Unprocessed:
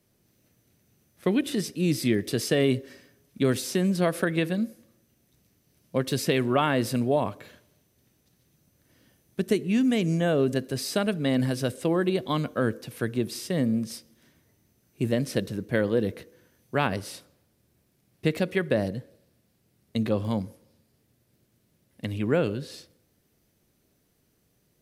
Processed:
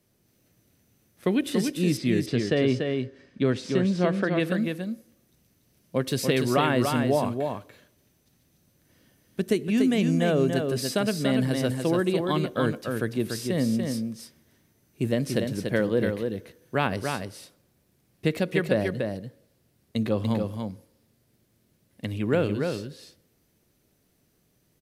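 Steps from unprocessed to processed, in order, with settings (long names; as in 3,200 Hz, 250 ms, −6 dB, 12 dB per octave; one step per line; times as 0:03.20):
0:01.97–0:04.40: high-frequency loss of the air 130 metres
single-tap delay 289 ms −5 dB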